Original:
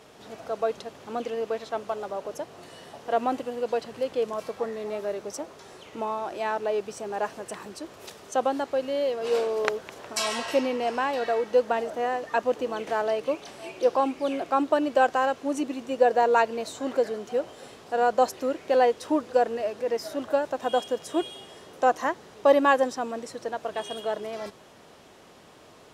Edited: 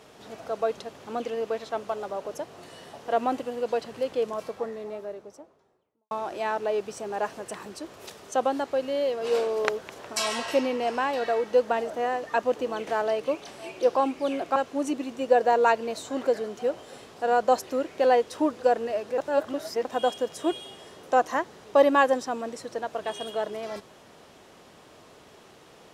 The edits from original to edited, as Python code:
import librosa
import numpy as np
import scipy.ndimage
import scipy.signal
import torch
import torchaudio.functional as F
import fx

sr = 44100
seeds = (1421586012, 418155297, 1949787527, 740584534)

y = fx.studio_fade_out(x, sr, start_s=4.09, length_s=2.02)
y = fx.edit(y, sr, fx.cut(start_s=14.56, length_s=0.7),
    fx.reverse_span(start_s=19.88, length_s=0.67), tone=tone)